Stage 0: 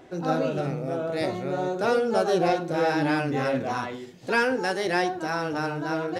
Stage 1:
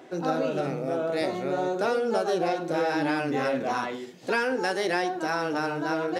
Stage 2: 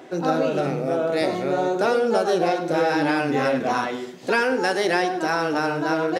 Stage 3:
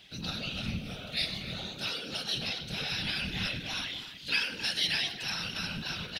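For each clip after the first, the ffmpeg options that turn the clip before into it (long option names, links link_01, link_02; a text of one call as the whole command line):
ffmpeg -i in.wav -af "highpass=200,acompressor=threshold=-24dB:ratio=6,volume=2dB" out.wav
ffmpeg -i in.wav -af "aecho=1:1:101|202|303|404:0.178|0.0747|0.0314|0.0132,volume=5dB" out.wav
ffmpeg -i in.wav -filter_complex "[0:a]firequalizer=gain_entry='entry(140,0);entry(310,-26);entry(800,-22);entry(3000,9);entry(4300,8);entry(7100,-7);entry(11000,2)':delay=0.05:min_phase=1,asplit=2[link_01][link_02];[link_02]adelay=270,highpass=300,lowpass=3400,asoftclip=type=hard:threshold=-18.5dB,volume=-11dB[link_03];[link_01][link_03]amix=inputs=2:normalize=0,afftfilt=real='hypot(re,im)*cos(2*PI*random(0))':imag='hypot(re,im)*sin(2*PI*random(1))':win_size=512:overlap=0.75,volume=3dB" out.wav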